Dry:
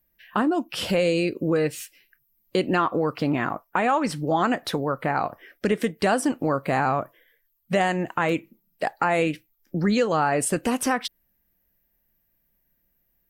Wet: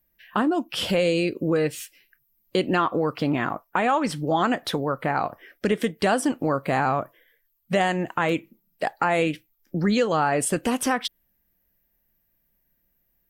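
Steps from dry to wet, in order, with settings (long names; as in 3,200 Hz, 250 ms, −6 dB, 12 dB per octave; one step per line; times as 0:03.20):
dynamic equaliser 3,300 Hz, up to +6 dB, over −53 dBFS, Q 6.9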